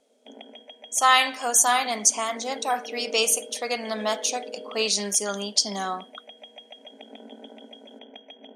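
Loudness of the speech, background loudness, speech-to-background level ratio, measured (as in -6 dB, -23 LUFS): -23.0 LUFS, -42.5 LUFS, 19.5 dB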